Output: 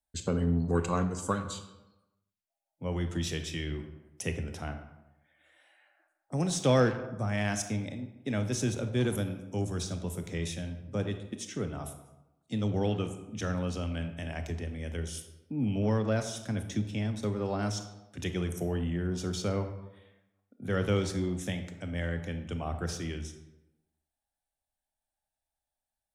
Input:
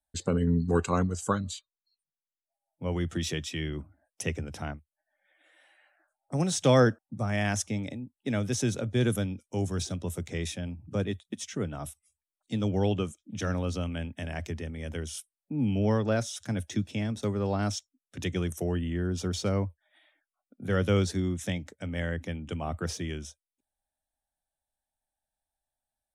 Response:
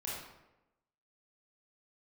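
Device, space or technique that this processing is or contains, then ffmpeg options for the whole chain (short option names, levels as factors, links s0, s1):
saturated reverb return: -filter_complex "[0:a]asplit=2[s0][s1];[1:a]atrim=start_sample=2205[s2];[s1][s2]afir=irnorm=-1:irlink=0,asoftclip=type=tanh:threshold=0.0708,volume=0.596[s3];[s0][s3]amix=inputs=2:normalize=0,volume=0.596"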